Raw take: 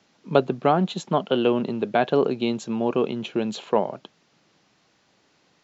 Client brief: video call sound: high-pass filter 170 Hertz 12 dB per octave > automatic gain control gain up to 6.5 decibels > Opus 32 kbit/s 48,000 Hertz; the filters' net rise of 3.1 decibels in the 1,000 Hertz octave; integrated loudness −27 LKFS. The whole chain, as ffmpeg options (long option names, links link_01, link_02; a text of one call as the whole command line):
ffmpeg -i in.wav -af "highpass=170,equalizer=frequency=1000:width_type=o:gain=4.5,dynaudnorm=maxgain=6.5dB,volume=-4dB" -ar 48000 -c:a libopus -b:a 32k out.opus